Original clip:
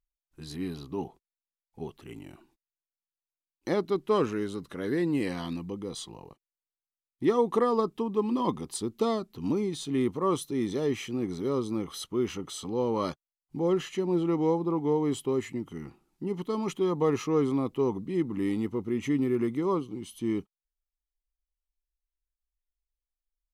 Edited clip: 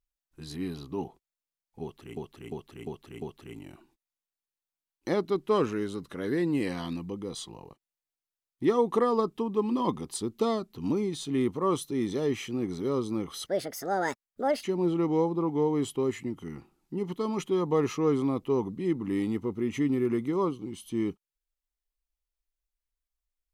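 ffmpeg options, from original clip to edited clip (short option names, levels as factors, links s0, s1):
-filter_complex "[0:a]asplit=7[s0][s1][s2][s3][s4][s5][s6];[s0]atrim=end=2.172[s7];[s1]atrim=start=1.818:end=2.172[s8];[s2]atrim=start=1.818:end=2.172[s9];[s3]atrim=start=1.818:end=2.172[s10];[s4]atrim=start=1.818:end=12.064[s11];[s5]atrim=start=12.06:end=13.93,asetpts=PTS-STARTPTS,asetrate=70119,aresample=44100,atrim=end_sample=51866,asetpts=PTS-STARTPTS[s12];[s6]atrim=start=13.926[s13];[s7][s8]acrossfade=d=0.004:c1=hsin:c2=hsin[s14];[s14][s9]acrossfade=d=0.004:c1=hsin:c2=hsin[s15];[s15][s10]acrossfade=d=0.004:c1=hsin:c2=hsin[s16];[s16][s11]acrossfade=d=0.004:c1=hsin:c2=hsin[s17];[s17][s12]acrossfade=d=0.004:c1=hsin:c2=hsin[s18];[s18][s13]acrossfade=d=0.004:c1=hsin:c2=hsin"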